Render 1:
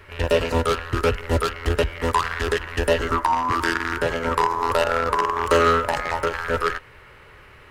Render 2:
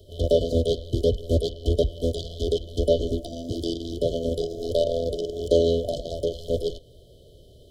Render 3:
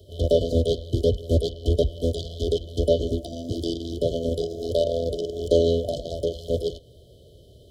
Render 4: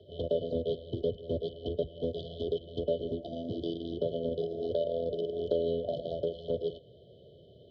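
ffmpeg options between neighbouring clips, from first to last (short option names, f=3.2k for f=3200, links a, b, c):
-filter_complex "[0:a]afftfilt=real='re*(1-between(b*sr/4096,720,3000))':imag='im*(1-between(b*sr/4096,720,3000))':win_size=4096:overlap=0.75,acrossover=split=110|5300[a][b][c];[c]acompressor=threshold=-52dB:ratio=5[d];[a][b][d]amix=inputs=3:normalize=0"
-af "highpass=59,lowshelf=f=120:g=4.5"
-af "acompressor=threshold=-28dB:ratio=2.5,highpass=150,equalizer=f=160:t=q:w=4:g=3,equalizer=f=290:t=q:w=4:g=-6,equalizer=f=1.2k:t=q:w=4:g=-8,lowpass=f=3.1k:w=0.5412,lowpass=f=3.1k:w=1.3066,volume=-1dB"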